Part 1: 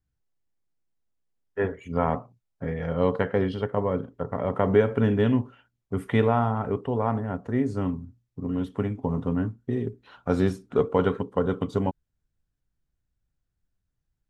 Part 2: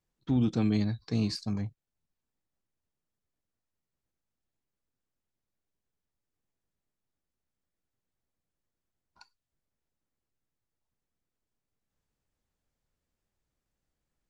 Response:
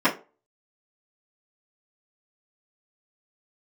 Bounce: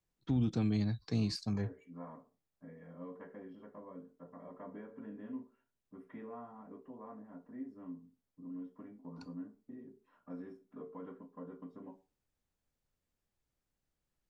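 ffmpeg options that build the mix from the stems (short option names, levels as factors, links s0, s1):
-filter_complex "[0:a]equalizer=f=3200:t=o:w=1.1:g=-4.5,acompressor=threshold=0.00562:ratio=1.5,volume=0.224,asplit=2[s0][s1];[s1]volume=0.0841[s2];[1:a]volume=0.708,asplit=2[s3][s4];[s4]apad=whole_len=630550[s5];[s0][s5]sidechaingate=range=0.0224:threshold=0.00126:ratio=16:detection=peak[s6];[2:a]atrim=start_sample=2205[s7];[s2][s7]afir=irnorm=-1:irlink=0[s8];[s6][s3][s8]amix=inputs=3:normalize=0,acrossover=split=180[s9][s10];[s10]acompressor=threshold=0.0224:ratio=6[s11];[s9][s11]amix=inputs=2:normalize=0"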